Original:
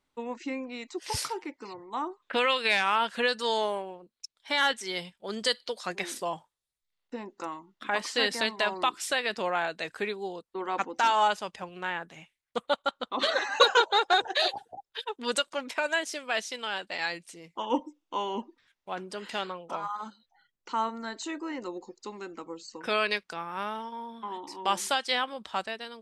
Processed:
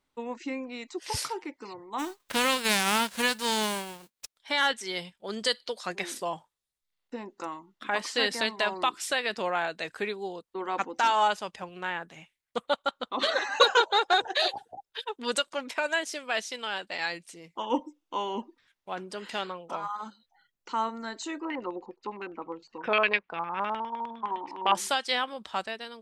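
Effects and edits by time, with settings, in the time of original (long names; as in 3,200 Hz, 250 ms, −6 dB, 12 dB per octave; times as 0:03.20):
0:01.98–0:04.36: spectral envelope flattened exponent 0.3
0:21.40–0:24.75: auto-filter low-pass square 9.8 Hz 960–2,600 Hz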